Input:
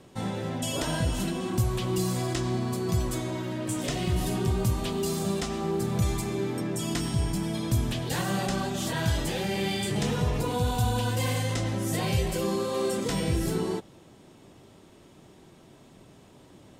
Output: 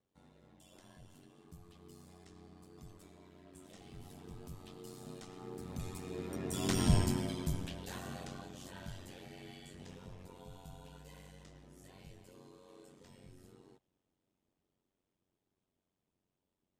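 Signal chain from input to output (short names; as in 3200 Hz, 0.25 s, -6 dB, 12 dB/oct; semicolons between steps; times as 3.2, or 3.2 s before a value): Doppler pass-by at 6.9, 13 m/s, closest 2.3 m; ring modulator 46 Hz; gain +3 dB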